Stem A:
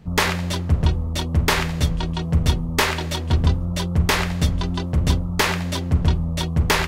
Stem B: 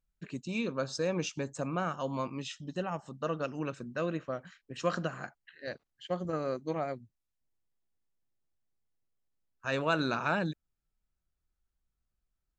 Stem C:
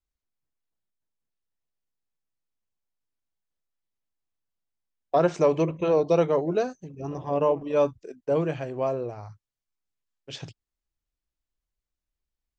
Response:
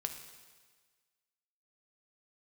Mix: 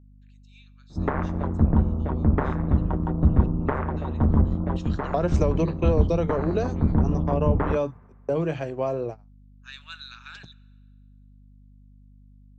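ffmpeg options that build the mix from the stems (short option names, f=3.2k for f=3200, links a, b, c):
-filter_complex "[0:a]lowpass=f=1.3k:w=0.5412,lowpass=f=1.3k:w=1.3066,tremolo=f=140:d=0.947,adelay=900,volume=2dB,asplit=2[a][b];[b]volume=-14dB[c];[1:a]highpass=f=1.5k:w=0.5412,highpass=f=1.5k:w=1.3066,equalizer=f=3.6k:t=o:w=0.42:g=10,volume=-10dB,afade=t=in:st=3.67:d=0.7:silence=0.251189,asplit=3[d][e][f];[e]volume=-11dB[g];[2:a]agate=range=-37dB:threshold=-34dB:ratio=16:detection=peak,volume=2.5dB[h];[f]apad=whole_len=342902[i];[a][i]sidechaincompress=threshold=-53dB:ratio=8:attack=16:release=475[j];[3:a]atrim=start_sample=2205[k];[c][g]amix=inputs=2:normalize=0[l];[l][k]afir=irnorm=-1:irlink=0[m];[j][d][h][m]amix=inputs=4:normalize=0,acrossover=split=230[n][o];[o]acompressor=threshold=-22dB:ratio=10[p];[n][p]amix=inputs=2:normalize=0,aeval=exprs='val(0)+0.00316*(sin(2*PI*50*n/s)+sin(2*PI*2*50*n/s)/2+sin(2*PI*3*50*n/s)/3+sin(2*PI*4*50*n/s)/4+sin(2*PI*5*50*n/s)/5)':c=same"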